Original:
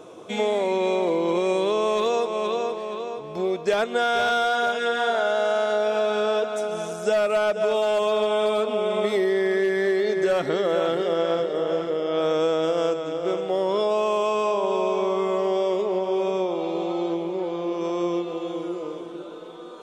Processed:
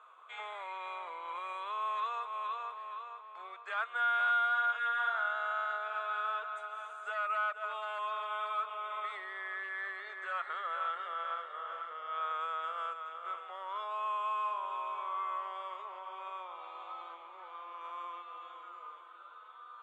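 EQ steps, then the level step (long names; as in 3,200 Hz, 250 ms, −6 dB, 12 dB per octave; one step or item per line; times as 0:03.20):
moving average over 8 samples
four-pole ladder high-pass 1,100 Hz, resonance 65%
0.0 dB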